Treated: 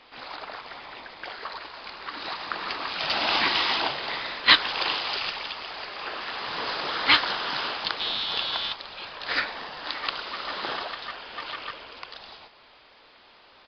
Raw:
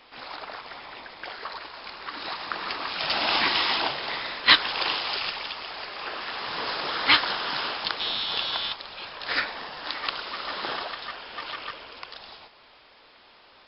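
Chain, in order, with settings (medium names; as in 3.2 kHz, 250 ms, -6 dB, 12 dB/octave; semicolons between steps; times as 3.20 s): resampled via 11.025 kHz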